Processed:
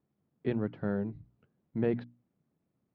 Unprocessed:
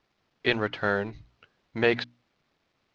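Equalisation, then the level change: band-pass 170 Hz, Q 1.4; +3.5 dB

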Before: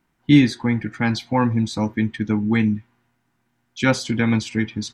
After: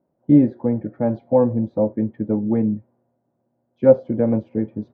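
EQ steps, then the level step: HPF 100 Hz; synth low-pass 570 Hz, resonance Q 7; air absorption 57 m; -2.0 dB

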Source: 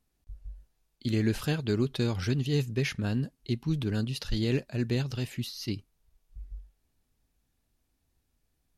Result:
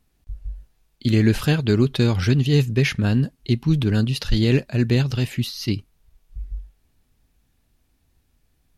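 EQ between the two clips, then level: tone controls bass +3 dB, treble -11 dB; high shelf 3600 Hz +11 dB; +8.0 dB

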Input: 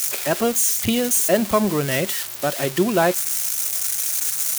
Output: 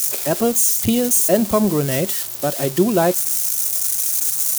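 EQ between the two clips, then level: bell 2000 Hz -9 dB 2.3 oct; +4.0 dB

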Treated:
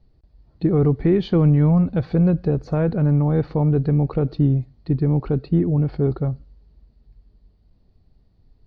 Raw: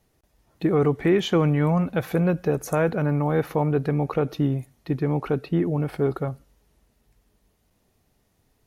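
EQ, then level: ladder low-pass 4700 Hz, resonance 80%; tilt -4.5 dB/oct; +7.0 dB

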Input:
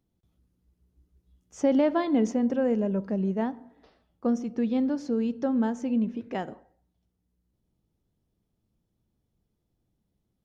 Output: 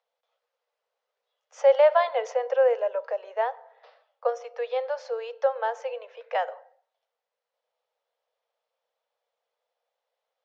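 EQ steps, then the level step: steep high-pass 480 Hz 96 dB/oct; air absorption 180 m; +8.5 dB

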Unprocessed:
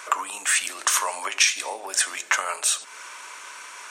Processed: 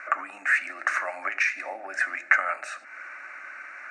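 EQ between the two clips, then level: synth low-pass 2100 Hz, resonance Q 1.8; fixed phaser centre 660 Hz, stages 8; 0.0 dB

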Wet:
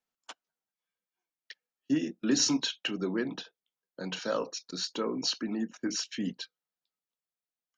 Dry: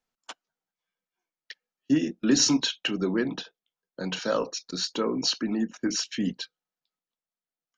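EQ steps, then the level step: low shelf 72 Hz -10 dB; -4.5 dB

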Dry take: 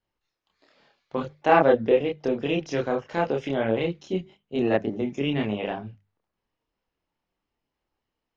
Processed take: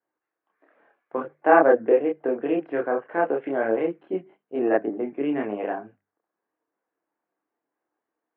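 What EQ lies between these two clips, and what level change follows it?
air absorption 370 m; speaker cabinet 310–2400 Hz, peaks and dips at 310 Hz +9 dB, 460 Hz +4 dB, 700 Hz +6 dB, 1100 Hz +4 dB, 1600 Hz +8 dB; -1.0 dB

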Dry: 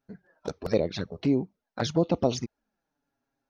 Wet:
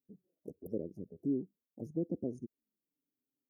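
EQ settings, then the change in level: HPF 280 Hz 6 dB/oct; inverse Chebyshev band-stop 1400–3800 Hz, stop band 80 dB; low shelf 400 Hz -10.5 dB; +2.0 dB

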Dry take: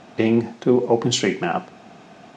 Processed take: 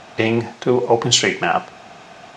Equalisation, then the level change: bell 240 Hz -11.5 dB 1.8 oct; +8.0 dB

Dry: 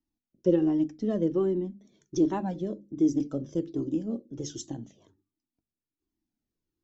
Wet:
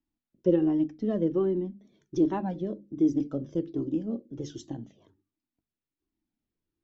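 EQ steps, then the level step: LPF 3800 Hz 12 dB/oct; 0.0 dB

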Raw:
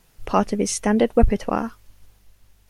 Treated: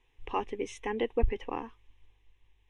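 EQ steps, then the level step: synth low-pass 3800 Hz, resonance Q 2; fixed phaser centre 930 Hz, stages 8; -9.0 dB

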